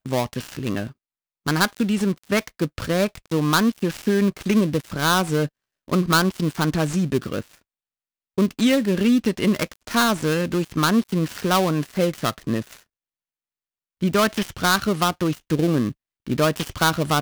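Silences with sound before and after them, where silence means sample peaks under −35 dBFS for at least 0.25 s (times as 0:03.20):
0:00.91–0:01.46
0:05.47–0:05.88
0:07.55–0:08.38
0:12.80–0:14.01
0:15.92–0:16.27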